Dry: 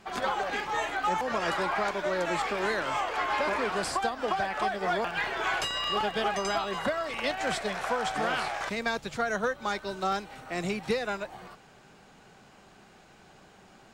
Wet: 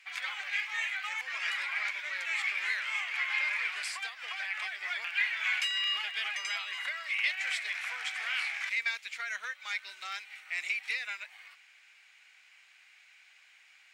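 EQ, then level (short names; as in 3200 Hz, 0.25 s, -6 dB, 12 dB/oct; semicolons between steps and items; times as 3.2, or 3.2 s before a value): resonant high-pass 2200 Hz, resonance Q 4.6; -5.0 dB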